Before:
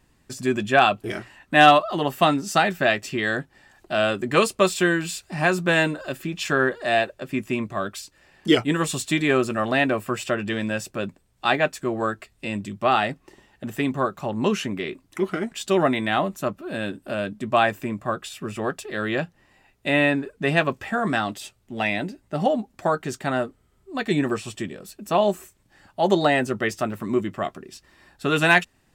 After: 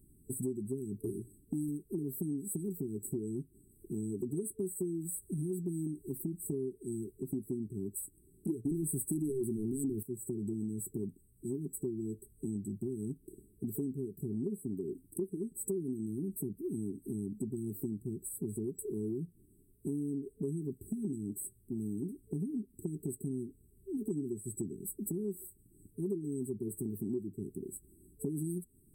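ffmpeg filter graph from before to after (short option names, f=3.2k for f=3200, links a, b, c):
-filter_complex "[0:a]asettb=1/sr,asplit=3[a][b][c];[a]atrim=end=8.654[d];[b]atrim=start=8.65:end=10.03,asetpts=PTS-STARTPTS,afade=t=in:d=0.004:c=qsin,afade=t=out:st=1.376:d=0.004:c=qsin,equalizer=f=7.8k:t=o:w=0.3:g=-4.5,aeval=exprs='0.422*sin(PI/2*3.16*val(0)/0.422)':c=same[e];[c]atrim=start=10.026[f];[d][e]acrossfade=d=0.004:c1=hsin:c2=qsin[g];[g][f]acrossfade=d=0.004:c1=qsin:c2=hsin,afftfilt=real='re*(1-between(b*sr/4096,440,7800))':imag='im*(1-between(b*sr/4096,440,7800))':win_size=4096:overlap=0.75,highshelf=f=7k:g=7.5,acompressor=threshold=-34dB:ratio=6"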